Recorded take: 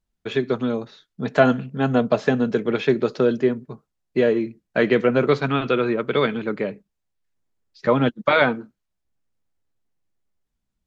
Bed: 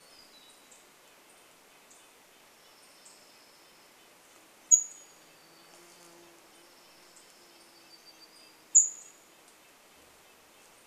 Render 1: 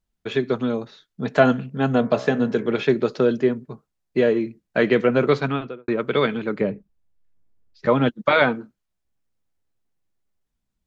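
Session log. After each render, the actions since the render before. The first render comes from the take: 1.96–2.83 de-hum 64.15 Hz, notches 36; 5.39–5.88 studio fade out; 6.61–7.86 tilt -2.5 dB/oct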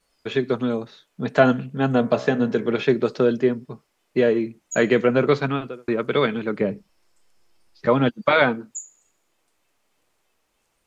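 add bed -14 dB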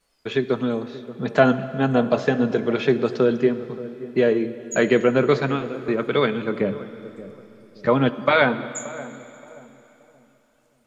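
darkening echo 0.576 s, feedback 35%, low-pass 870 Hz, level -15 dB; plate-style reverb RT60 3.4 s, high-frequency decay 0.95×, DRR 13 dB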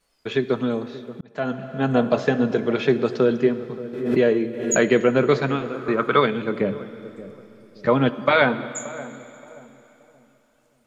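1.21–1.95 fade in; 3.93–4.9 backwards sustainer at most 63 dB/s; 5.64–6.2 bell 1200 Hz +3.5 dB -> +13 dB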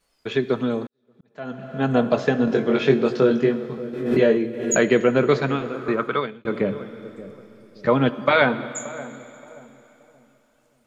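0.87–1.75 fade in quadratic; 2.45–4.37 doubler 22 ms -3.5 dB; 5.89–6.45 fade out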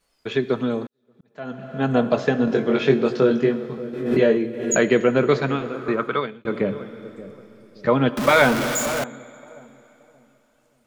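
8.17–9.04 zero-crossing step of -20.5 dBFS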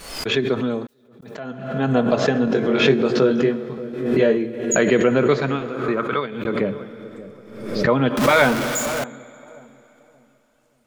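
backwards sustainer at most 65 dB/s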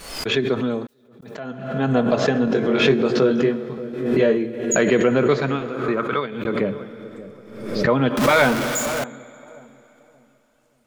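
soft clip -3.5 dBFS, distortion -27 dB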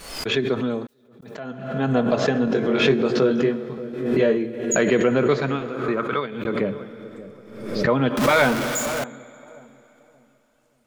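gain -1.5 dB

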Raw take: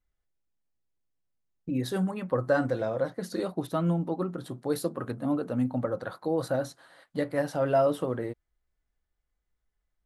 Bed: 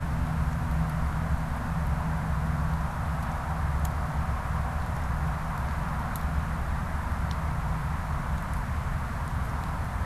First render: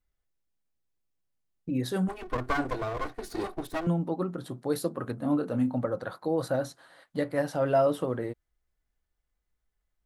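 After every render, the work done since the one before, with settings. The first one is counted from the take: 2.08–3.87 minimum comb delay 2.7 ms; 5.18–5.77 doubler 27 ms -8 dB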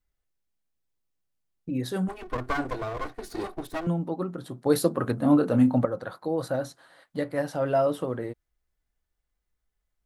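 4.66–5.85 gain +7 dB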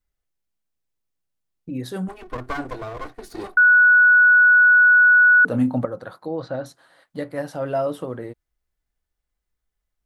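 3.57–5.45 bleep 1470 Hz -9.5 dBFS; 6.26–6.66 LPF 4800 Hz 24 dB/oct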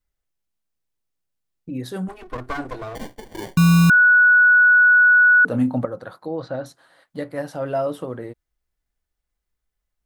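2.95–3.9 sample-rate reducer 1300 Hz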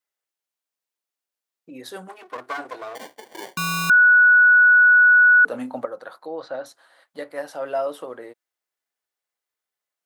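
HPF 490 Hz 12 dB/oct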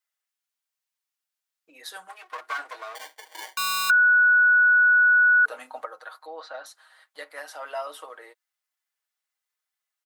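HPF 970 Hz 12 dB/oct; comb 6.4 ms, depth 52%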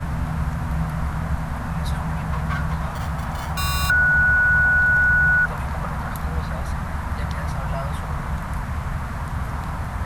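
add bed +3.5 dB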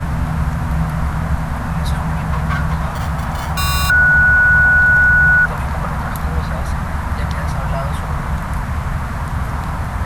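gain +6 dB; limiter -3 dBFS, peak gain reduction 1.5 dB

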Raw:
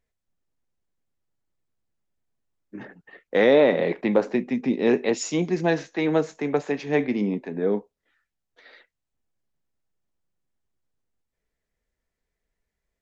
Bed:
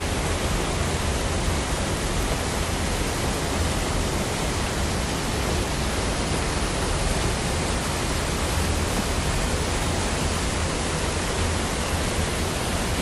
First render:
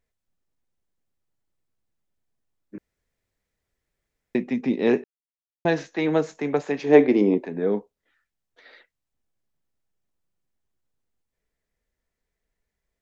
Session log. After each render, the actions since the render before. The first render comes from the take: 2.78–4.35 room tone; 5.04–5.65 mute; 6.84–7.46 EQ curve 220 Hz 0 dB, 330 Hz +11 dB, 2100 Hz +2 dB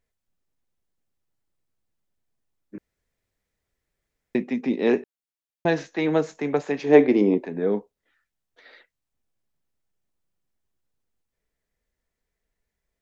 4.42–4.98 HPF 170 Hz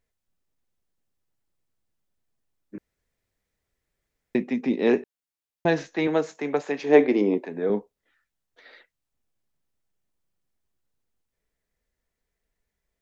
6.07–7.7 HPF 290 Hz 6 dB/oct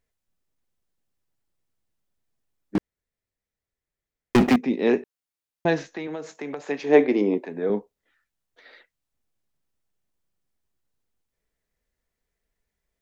2.75–4.56 sample leveller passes 5; 5.84–6.64 compressor 16:1, threshold -28 dBFS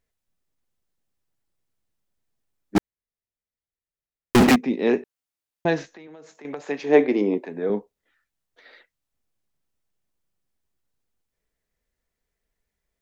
2.76–4.55 sample leveller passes 5; 5.85–6.45 compressor 2:1, threshold -51 dBFS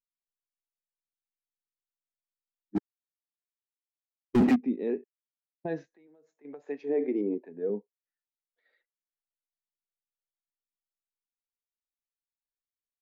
limiter -16 dBFS, peak gain reduction 11.5 dB; spectral expander 1.5:1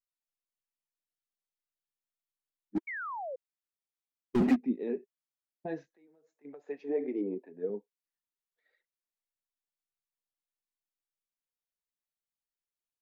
flange 1.7 Hz, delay 0.1 ms, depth 5.8 ms, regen +43%; 2.87–3.36 painted sound fall 490–2300 Hz -38 dBFS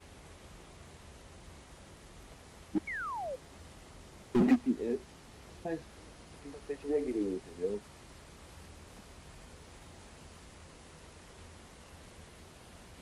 add bed -28.5 dB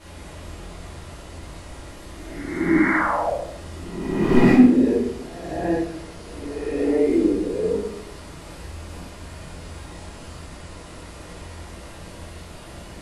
spectral swells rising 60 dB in 1.33 s; shoebox room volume 130 m³, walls mixed, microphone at 2.7 m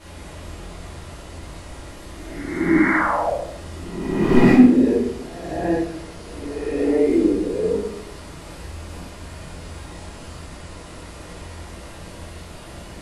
gain +1.5 dB

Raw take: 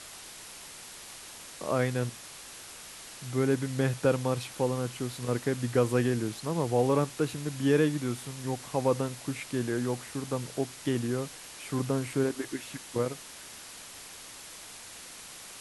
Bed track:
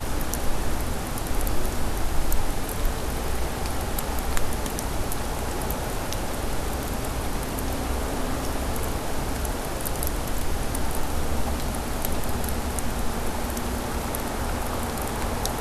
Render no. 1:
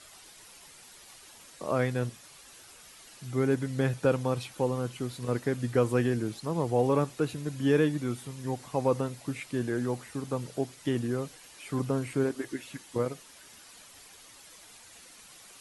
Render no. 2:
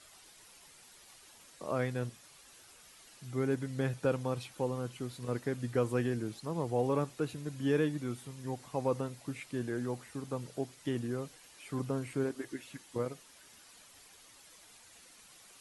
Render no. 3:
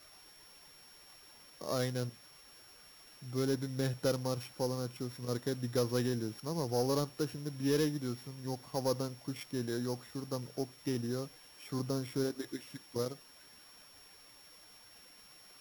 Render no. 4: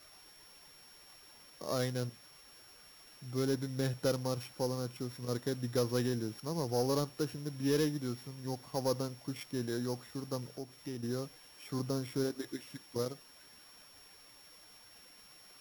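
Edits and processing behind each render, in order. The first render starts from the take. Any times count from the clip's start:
denoiser 9 dB, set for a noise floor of -46 dBFS
gain -5.5 dB
sample sorter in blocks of 8 samples; soft clip -20 dBFS, distortion -22 dB
10.52–11.03 compressor 1.5:1, threshold -48 dBFS

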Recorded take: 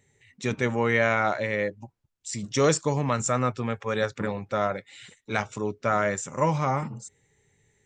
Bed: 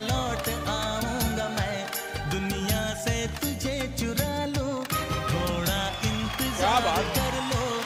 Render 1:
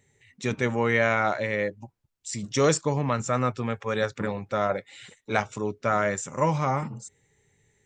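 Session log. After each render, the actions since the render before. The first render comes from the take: 2.81–3.33 air absorption 86 m; 4.69–5.4 bell 630 Hz +5 dB 1.6 oct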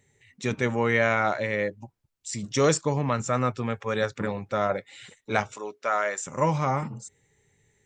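5.56–6.27 HPF 540 Hz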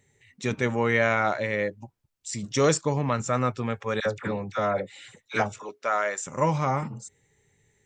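4–5.69 dispersion lows, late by 62 ms, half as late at 990 Hz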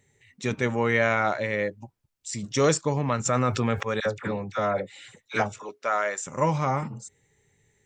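3.25–3.83 fast leveller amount 70%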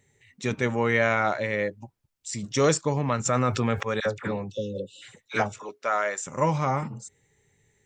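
4.5–5.02 spectral delete 570–2600 Hz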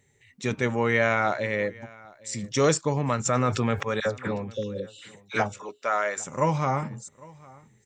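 echo 0.804 s -23.5 dB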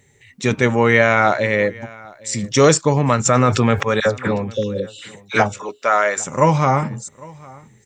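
gain +9.5 dB; limiter -1 dBFS, peak gain reduction 2 dB

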